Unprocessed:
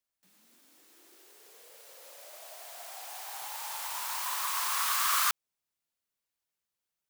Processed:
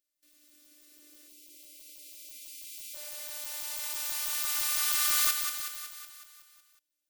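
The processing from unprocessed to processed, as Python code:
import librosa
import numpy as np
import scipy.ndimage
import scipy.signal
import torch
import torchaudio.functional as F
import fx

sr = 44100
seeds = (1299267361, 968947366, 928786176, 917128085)

p1 = fx.tilt_shelf(x, sr, db=-8.5, hz=970.0)
p2 = p1 + fx.echo_feedback(p1, sr, ms=185, feedback_pct=59, wet_db=-6.5, dry=0)
p3 = fx.spec_box(p2, sr, start_s=1.28, length_s=1.66, low_hz=510.0, high_hz=2100.0, gain_db=-25)
p4 = fx.robotise(p3, sr, hz=297.0)
p5 = fx.low_shelf_res(p4, sr, hz=620.0, db=9.5, q=3.0)
y = F.gain(torch.from_numpy(p5), -4.0).numpy()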